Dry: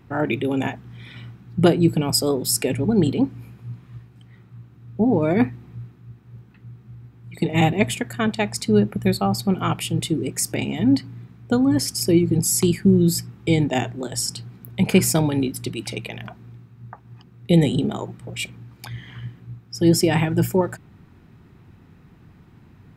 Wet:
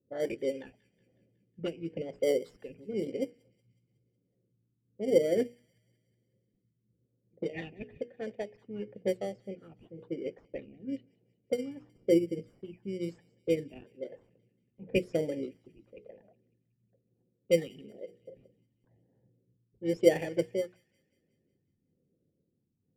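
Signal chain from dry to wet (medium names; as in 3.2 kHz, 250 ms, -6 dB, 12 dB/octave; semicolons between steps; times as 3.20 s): vowel filter e; hum notches 60/120/180/240/300/360/420/480 Hz; phase shifter stages 8, 1 Hz, lowest notch 530–4800 Hz; in parallel at -5.5 dB: sample-rate reducer 2.6 kHz, jitter 0%; on the sum: level-controlled noise filter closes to 340 Hz, open at -27 dBFS; rotary cabinet horn 6 Hz, later 0.7 Hz, at 3.95 s; on a send: feedback echo behind a high-pass 184 ms, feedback 56%, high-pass 1.9 kHz, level -19 dB; on the sum: upward expansion 1.5:1, over -43 dBFS; trim +6.5 dB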